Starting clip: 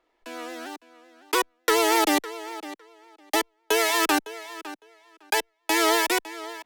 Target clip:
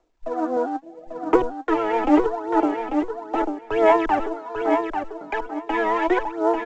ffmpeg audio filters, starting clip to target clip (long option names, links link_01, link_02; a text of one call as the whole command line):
ffmpeg -i in.wav -filter_complex "[0:a]acrossover=split=250|1400|5400[link_01][link_02][link_03][link_04];[link_02]acontrast=33[link_05];[link_01][link_05][link_03][link_04]amix=inputs=4:normalize=0,alimiter=limit=-16dB:level=0:latency=1:release=15,aemphasis=mode=reproduction:type=riaa,asoftclip=type=tanh:threshold=-14.5dB,afwtdn=0.0178,equalizer=frequency=750:width_type=o:width=0.71:gain=5,aphaser=in_gain=1:out_gain=1:delay=4.2:decay=0.73:speed=0.77:type=sinusoidal,asettb=1/sr,asplit=3[link_06][link_07][link_08];[link_06]atrim=end=0.564[link_09];[link_07]atrim=start=0.56:end=1.36,asetpts=PTS-STARTPTS,afade=type=in:duration=0.004:curve=qsin,afade=type=out:start_time=0.796:duration=0.004:curve=qsin,aecho=1:1:6.3:0.65,atrim=end_sample=35280[link_10];[link_08]atrim=start=1.356[link_11];[link_09][link_10]acrossfade=duration=0.004:curve1=hsin:curve2=qsin[link_12];[link_12][link_11]acrossfade=duration=0.004:curve1=qsin:curve2=hsin,aecho=1:1:843|1686|2529:0.501|0.0852|0.0145" -ar 16000 -c:a pcm_mulaw out.wav